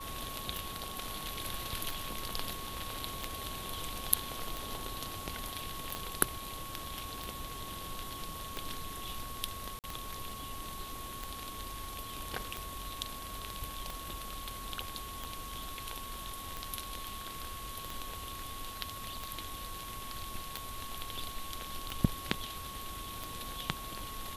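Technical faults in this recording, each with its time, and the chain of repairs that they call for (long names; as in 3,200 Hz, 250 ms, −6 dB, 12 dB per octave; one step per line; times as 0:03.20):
scratch tick 45 rpm
whistle 1,100 Hz −45 dBFS
0:05.95: click −21 dBFS
0:09.79–0:09.84: drop-out 48 ms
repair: click removal
notch filter 1,100 Hz, Q 30
repair the gap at 0:09.79, 48 ms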